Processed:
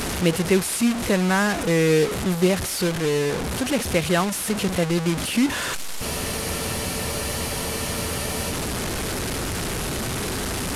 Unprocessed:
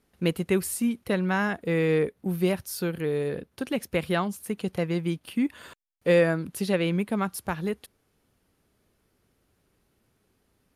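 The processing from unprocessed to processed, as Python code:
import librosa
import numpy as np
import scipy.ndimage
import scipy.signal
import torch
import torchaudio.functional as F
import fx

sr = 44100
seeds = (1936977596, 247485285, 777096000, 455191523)

y = fx.delta_mod(x, sr, bps=64000, step_db=-25.5)
y = fx.spec_freeze(y, sr, seeds[0], at_s=6.04, hold_s=2.46)
y = y * 10.0 ** (5.0 / 20.0)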